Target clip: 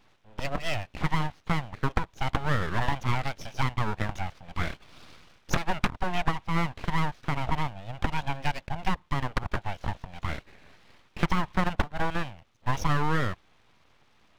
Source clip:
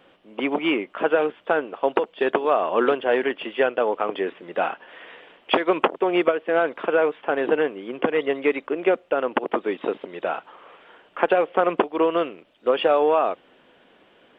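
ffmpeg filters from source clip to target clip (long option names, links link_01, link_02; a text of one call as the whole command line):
ffmpeg -i in.wav -af "aeval=exprs='abs(val(0))':channel_layout=same,equalizer=frequency=77:width=0.38:gain=5,volume=-5.5dB" out.wav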